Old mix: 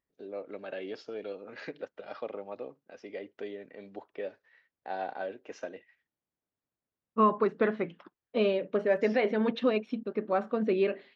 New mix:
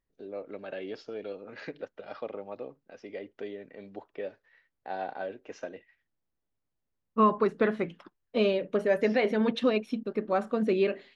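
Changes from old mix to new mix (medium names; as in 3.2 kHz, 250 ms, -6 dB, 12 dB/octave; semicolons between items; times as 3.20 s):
second voice: remove distance through air 160 m; master: remove high-pass 170 Hz 6 dB/octave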